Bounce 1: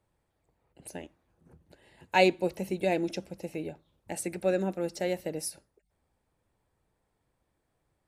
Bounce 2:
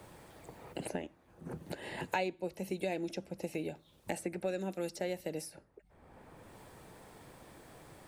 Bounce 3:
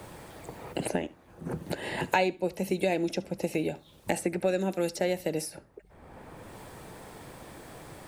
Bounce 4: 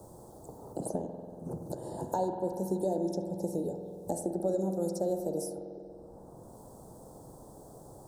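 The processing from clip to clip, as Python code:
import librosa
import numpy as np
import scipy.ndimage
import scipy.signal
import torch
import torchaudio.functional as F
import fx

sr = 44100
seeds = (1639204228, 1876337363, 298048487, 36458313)

y1 = fx.band_squash(x, sr, depth_pct=100)
y1 = y1 * librosa.db_to_amplitude(-6.0)
y2 = y1 + 10.0 ** (-22.0 / 20.0) * np.pad(y1, (int(71 * sr / 1000.0), 0))[:len(y1)]
y2 = y2 * librosa.db_to_amplitude(8.5)
y3 = scipy.signal.sosfilt(scipy.signal.cheby1(2, 1.0, [750.0, 6700.0], 'bandstop', fs=sr, output='sos'), y2)
y3 = fx.rev_spring(y3, sr, rt60_s=2.7, pass_ms=(47,), chirp_ms=70, drr_db=4.5)
y3 = y3 * librosa.db_to_amplitude(-4.0)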